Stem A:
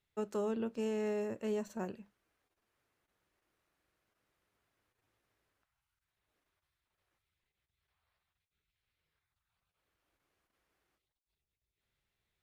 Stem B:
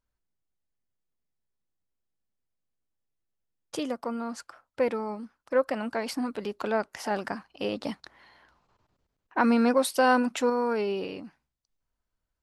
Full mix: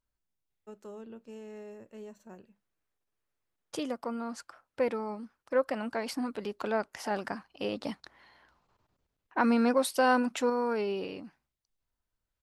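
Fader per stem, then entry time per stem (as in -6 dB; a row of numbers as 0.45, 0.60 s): -10.0, -3.0 dB; 0.50, 0.00 s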